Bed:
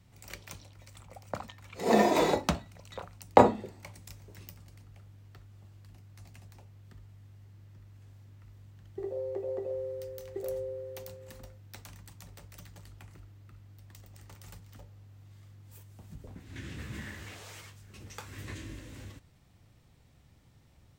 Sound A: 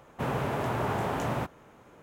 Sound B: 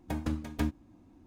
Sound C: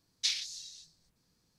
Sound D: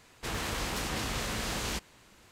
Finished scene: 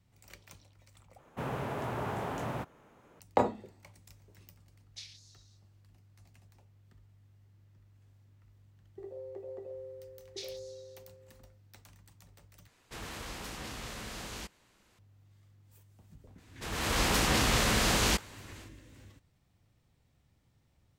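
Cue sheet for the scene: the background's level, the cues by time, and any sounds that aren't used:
bed -8.5 dB
1.18 s: replace with A -6 dB
4.73 s: add C -16.5 dB
10.13 s: add C -14 dB
12.68 s: replace with D -8.5 dB
16.38 s: add D -7 dB + level rider gain up to 14 dB
not used: B

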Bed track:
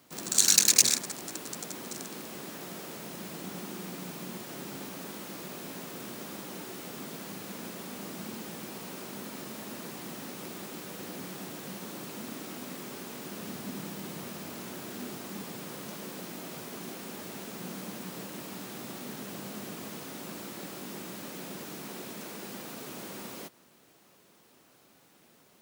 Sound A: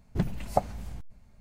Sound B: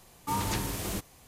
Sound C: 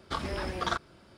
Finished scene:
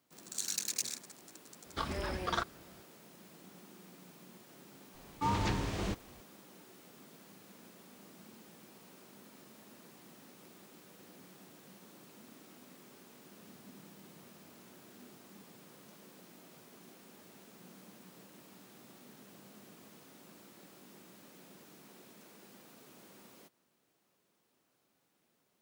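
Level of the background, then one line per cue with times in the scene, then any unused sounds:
bed track -15.5 dB
1.66 s: add C -3.5 dB
4.94 s: add B -0.5 dB + distance through air 120 m
not used: A

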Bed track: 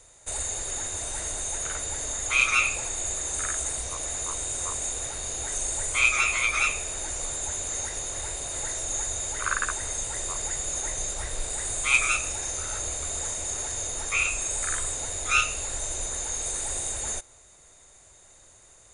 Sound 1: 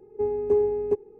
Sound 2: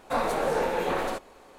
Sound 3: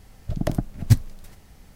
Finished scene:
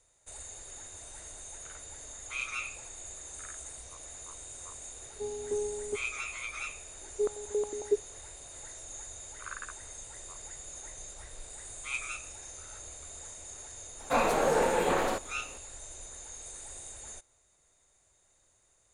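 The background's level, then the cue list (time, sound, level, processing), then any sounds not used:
bed track -14.5 dB
5.01 s: add 1 -11.5 dB
7.00 s: add 1 -2.5 dB + step-sequenced band-pass 11 Hz 320–1600 Hz
14.00 s: add 2
not used: 3

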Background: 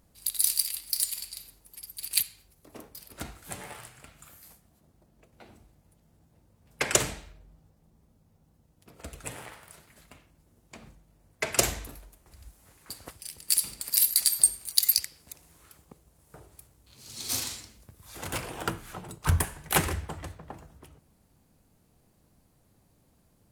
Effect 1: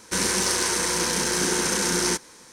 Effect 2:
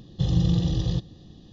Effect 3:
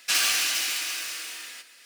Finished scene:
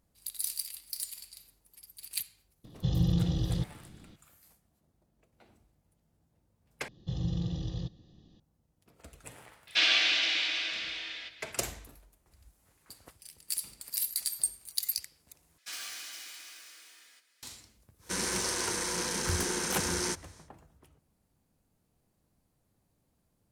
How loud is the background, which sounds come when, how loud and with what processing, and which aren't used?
background -9.5 dB
2.64 s: add 2 -5.5 dB
6.88 s: replace with 2 -11 dB
9.67 s: add 3 -3 dB + cabinet simulation 180–4600 Hz, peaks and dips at 310 Hz +7 dB, 610 Hz +7 dB, 1.2 kHz -4 dB, 2.2 kHz +5 dB, 3.5 kHz +9 dB
15.58 s: replace with 3 -17.5 dB + band-stop 2.7 kHz, Q 10
17.98 s: add 1 -9 dB, fades 0.10 s

